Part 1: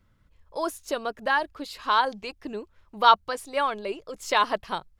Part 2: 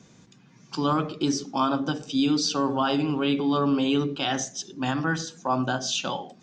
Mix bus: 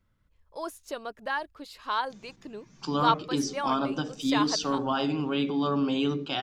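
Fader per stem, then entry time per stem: -7.0 dB, -3.5 dB; 0.00 s, 2.10 s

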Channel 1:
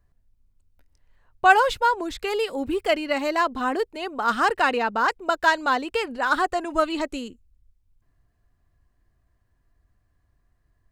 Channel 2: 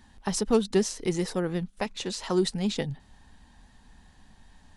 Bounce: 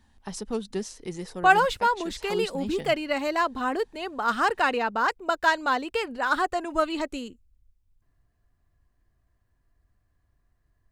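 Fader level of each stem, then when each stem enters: -2.5 dB, -7.5 dB; 0.00 s, 0.00 s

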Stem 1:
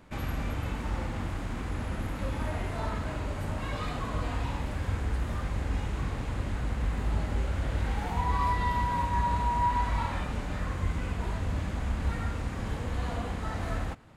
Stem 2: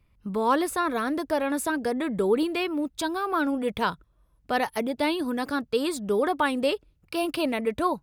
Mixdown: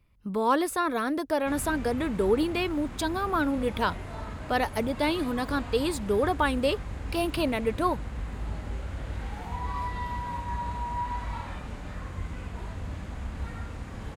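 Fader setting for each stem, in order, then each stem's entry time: -5.0 dB, -1.0 dB; 1.35 s, 0.00 s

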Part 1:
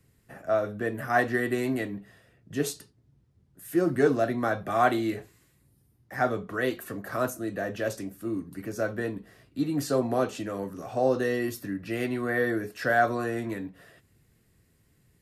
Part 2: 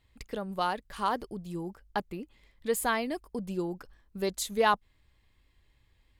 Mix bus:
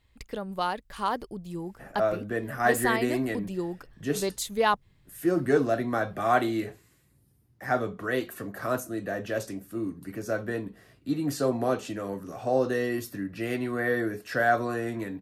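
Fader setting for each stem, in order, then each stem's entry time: -0.5 dB, +1.0 dB; 1.50 s, 0.00 s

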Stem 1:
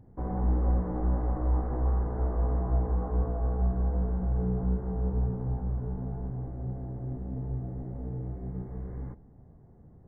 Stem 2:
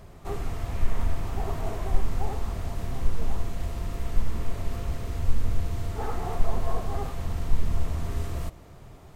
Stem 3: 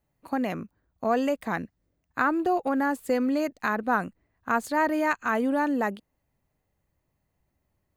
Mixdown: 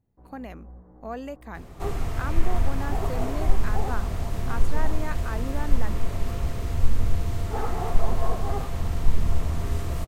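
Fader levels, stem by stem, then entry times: -19.5 dB, +3.0 dB, -10.5 dB; 0.00 s, 1.55 s, 0.00 s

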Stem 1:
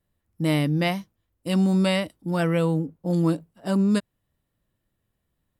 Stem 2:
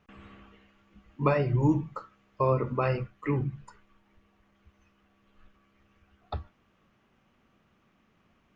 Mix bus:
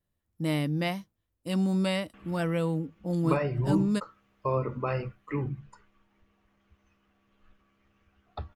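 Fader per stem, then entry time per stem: -6.0 dB, -3.0 dB; 0.00 s, 2.05 s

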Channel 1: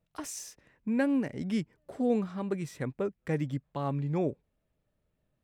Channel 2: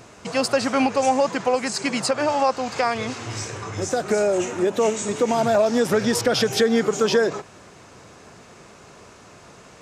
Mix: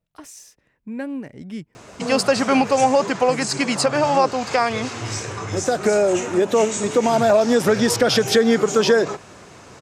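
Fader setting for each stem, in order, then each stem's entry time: -1.5 dB, +3.0 dB; 0.00 s, 1.75 s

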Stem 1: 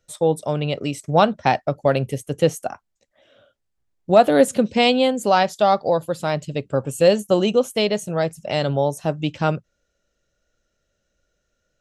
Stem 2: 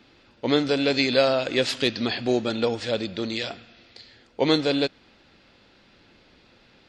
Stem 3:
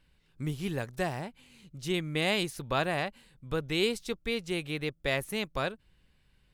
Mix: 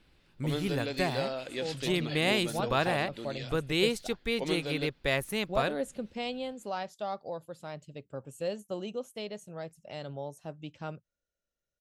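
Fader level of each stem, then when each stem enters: -19.0 dB, -13.5 dB, +1.0 dB; 1.40 s, 0.00 s, 0.00 s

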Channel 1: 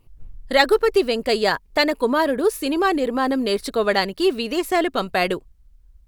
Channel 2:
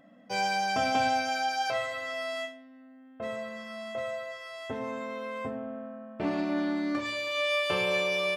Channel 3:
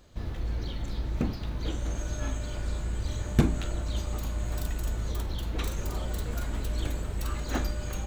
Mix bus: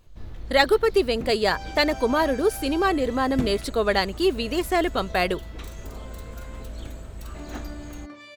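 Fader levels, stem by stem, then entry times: -2.5 dB, -11.5 dB, -6.0 dB; 0.00 s, 1.15 s, 0.00 s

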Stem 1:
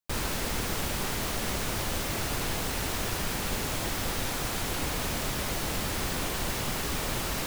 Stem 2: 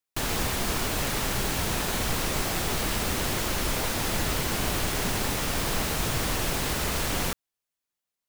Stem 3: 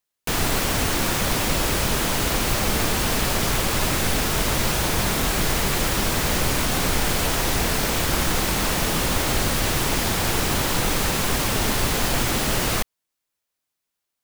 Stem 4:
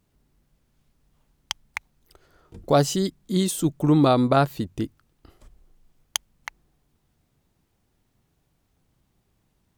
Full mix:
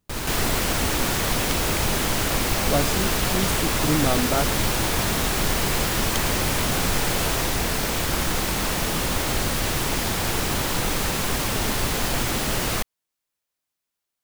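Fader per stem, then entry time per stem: +1.0 dB, -7.0 dB, -2.0 dB, -6.0 dB; 0.00 s, 0.00 s, 0.00 s, 0.00 s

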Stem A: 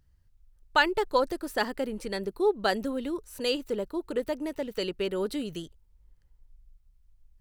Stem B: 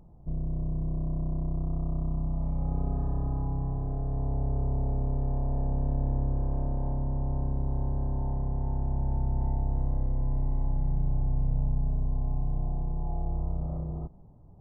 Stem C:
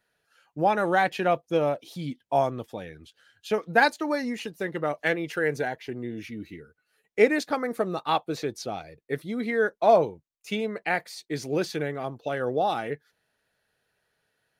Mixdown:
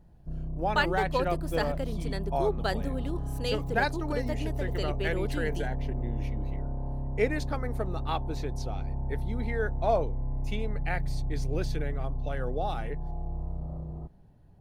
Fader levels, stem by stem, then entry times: -4.5 dB, -4.0 dB, -7.5 dB; 0.00 s, 0.00 s, 0.00 s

